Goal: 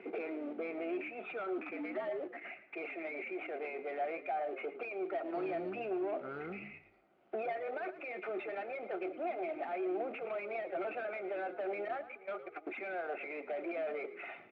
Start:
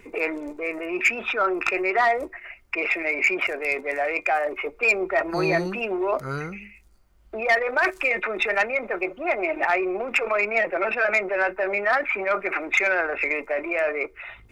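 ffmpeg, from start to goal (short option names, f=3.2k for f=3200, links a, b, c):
-filter_complex "[0:a]asettb=1/sr,asplit=3[a][b][c];[a]atrim=end=9.264[d];[b]atrim=start=9.26:end=9.75,asetpts=PTS-STARTPTS,afade=t=in:d=0.004:c=qsin,afade=t=out:st=0.486:d=0.004:c=qsin,aeval=exprs='if(lt(val(0),0),0.447*val(0),val(0))':c=same[e];[c]atrim=start=9.746[f];[d][e]acrossfade=d=0.004:c1=hsin:c2=qsin[g];[g][f]acrossfade=d=0.004:c1=qsin:c2=hsin,asettb=1/sr,asplit=3[h][i][j];[h]atrim=end=11.884[k];[i]atrim=start=11.88:end=12.67,asetpts=PTS-STARTPTS,afade=t=in:d=0.004:c=qsin,afade=t=out:st=0.786:d=0.004:c=qsin,agate=range=-30dB:threshold=-22dB:ratio=16:detection=peak[l];[j]atrim=start=12.666[m];[k][l]acrossfade=d=0.004:c1=hsin:c2=qsin[n];[n][m]acrossfade=d=0.004:c1=qsin:c2=hsin,aemphasis=mode=production:type=50kf,bandreject=f=413.2:t=h:w=4,bandreject=f=826.4:t=h:w=4,bandreject=f=1.2396k:t=h:w=4,asplit=3[o][p][q];[o]afade=t=out:st=1.57:d=0.02[r];[p]afreqshift=-75,afade=t=in:st=1.57:d=0.02,afade=t=out:st=2.19:d=0.02[s];[q]afade=t=in:st=2.19:d=0.02[t];[r][s][t]amix=inputs=3:normalize=0,acrusher=bits=2:mode=log:mix=0:aa=0.000001,acompressor=threshold=-34dB:ratio=6,asoftclip=type=hard:threshold=-36.5dB,highpass=f=200:w=0.5412,highpass=f=200:w=1.3066,equalizer=f=240:t=q:w=4:g=-4,equalizer=f=380:t=q:w=4:g=5,equalizer=f=730:t=q:w=4:g=9,equalizer=f=1k:t=q:w=4:g=-9,equalizer=f=1.8k:t=q:w=4:g=-8,lowpass=f=2.3k:w=0.5412,lowpass=f=2.3k:w=1.3066,asplit=4[u][v][w][x];[v]adelay=112,afreqshift=-54,volume=-14dB[y];[w]adelay=224,afreqshift=-108,volume=-23.9dB[z];[x]adelay=336,afreqshift=-162,volume=-33.8dB[aa];[u][y][z][aa]amix=inputs=4:normalize=0"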